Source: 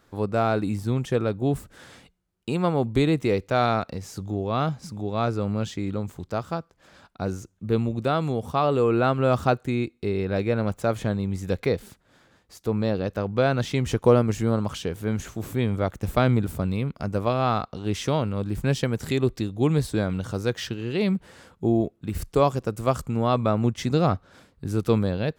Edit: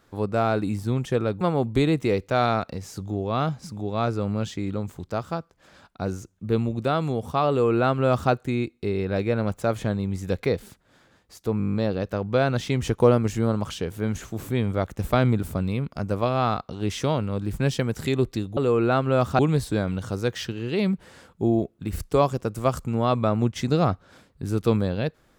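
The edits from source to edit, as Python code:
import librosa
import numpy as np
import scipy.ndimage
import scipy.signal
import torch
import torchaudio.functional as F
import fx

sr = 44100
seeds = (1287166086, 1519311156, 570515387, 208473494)

y = fx.edit(x, sr, fx.cut(start_s=1.41, length_s=1.2),
    fx.duplicate(start_s=8.69, length_s=0.82, to_s=19.61),
    fx.stutter(start_s=12.78, slice_s=0.02, count=9), tone=tone)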